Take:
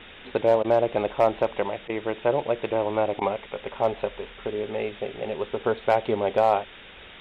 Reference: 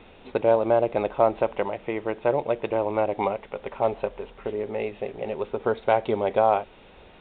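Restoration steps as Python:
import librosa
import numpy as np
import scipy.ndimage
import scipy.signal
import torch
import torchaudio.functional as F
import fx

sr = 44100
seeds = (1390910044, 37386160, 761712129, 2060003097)

y = fx.fix_declip(x, sr, threshold_db=-10.0)
y = fx.fix_interpolate(y, sr, at_s=(0.63, 1.88, 3.2), length_ms=12.0)
y = fx.noise_reduce(y, sr, print_start_s=6.69, print_end_s=7.19, reduce_db=6.0)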